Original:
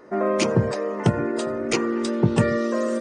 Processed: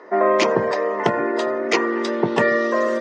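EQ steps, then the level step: speaker cabinet 290–6100 Hz, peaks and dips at 410 Hz +4 dB, 690 Hz +6 dB, 1000 Hz +8 dB, 1900 Hz +9 dB, 3400 Hz +3 dB; +2.0 dB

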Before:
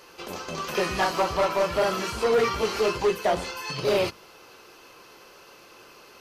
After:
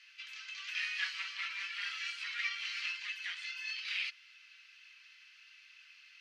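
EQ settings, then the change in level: steep high-pass 1900 Hz 36 dB/oct; LPF 2900 Hz 12 dB/oct; 0.0 dB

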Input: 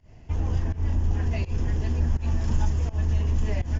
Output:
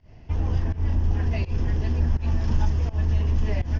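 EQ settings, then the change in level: steep low-pass 5900 Hz 48 dB/oct; +1.5 dB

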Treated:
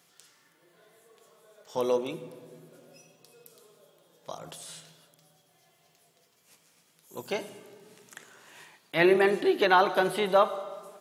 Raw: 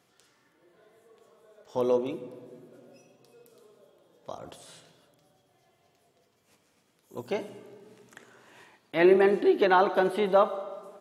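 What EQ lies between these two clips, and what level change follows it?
tilt +2.5 dB/oct; bell 160 Hz +12 dB 0.25 oct; +1.0 dB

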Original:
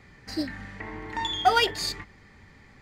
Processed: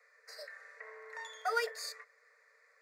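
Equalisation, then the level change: Chebyshev high-pass 440 Hz, order 10; fixed phaser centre 840 Hz, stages 6; -6.5 dB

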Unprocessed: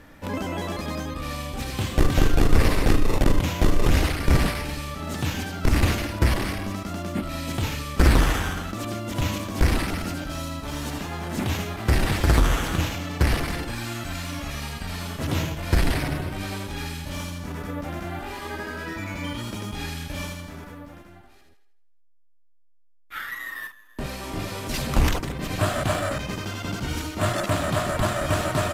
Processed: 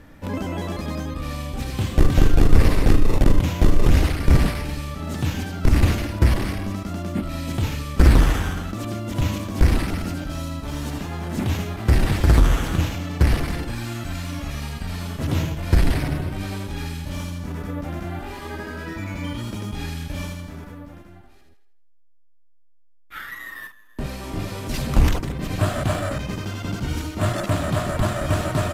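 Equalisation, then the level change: low shelf 360 Hz +6.5 dB; -2.0 dB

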